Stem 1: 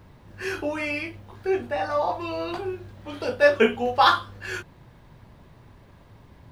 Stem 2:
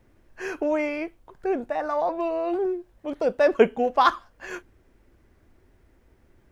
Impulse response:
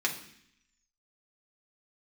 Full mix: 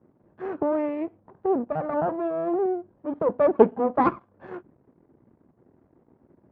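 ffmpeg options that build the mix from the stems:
-filter_complex "[0:a]acompressor=threshold=-27dB:ratio=6,volume=-19dB[a];[1:a]aeval=exprs='max(val(0),0)':c=same,volume=2.5dB[b];[a][b]amix=inputs=2:normalize=0,asuperpass=centerf=450:order=4:qfactor=0.5,lowshelf=f=320:g=11.5"

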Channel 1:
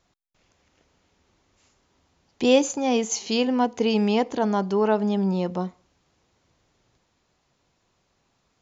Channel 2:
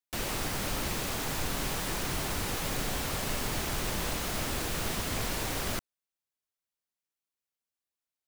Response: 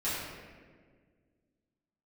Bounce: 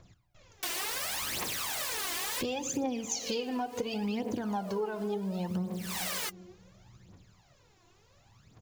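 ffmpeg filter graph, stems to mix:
-filter_complex "[0:a]equalizer=f=110:t=o:w=0.95:g=10,acompressor=threshold=-22dB:ratio=6,volume=1dB,asplit=3[a][b][c];[b]volume=-15.5dB[d];[1:a]highpass=f=1.1k:p=1,bandreject=f=1.4k:w=18,adelay=500,volume=2.5dB[e];[c]apad=whole_len=386833[f];[e][f]sidechaincompress=threshold=-43dB:ratio=12:attack=28:release=272[g];[2:a]atrim=start_sample=2205[h];[d][h]afir=irnorm=-1:irlink=0[i];[a][g][i]amix=inputs=3:normalize=0,aphaser=in_gain=1:out_gain=1:delay=3:decay=0.69:speed=0.7:type=triangular,acompressor=threshold=-31dB:ratio=6"

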